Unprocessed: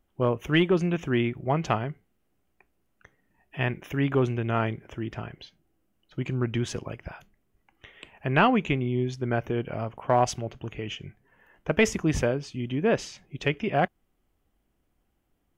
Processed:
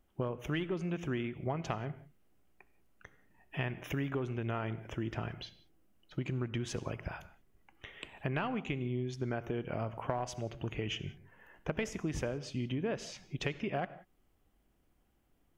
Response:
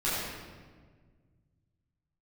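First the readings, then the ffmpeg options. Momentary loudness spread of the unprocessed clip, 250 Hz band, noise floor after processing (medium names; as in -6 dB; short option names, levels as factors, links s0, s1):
14 LU, -10.0 dB, -72 dBFS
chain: -filter_complex "[0:a]acompressor=threshold=0.0251:ratio=10,asplit=2[s0][s1];[1:a]atrim=start_sample=2205,afade=t=out:st=0.18:d=0.01,atrim=end_sample=8379,adelay=63[s2];[s1][s2]afir=irnorm=-1:irlink=0,volume=0.0631[s3];[s0][s3]amix=inputs=2:normalize=0"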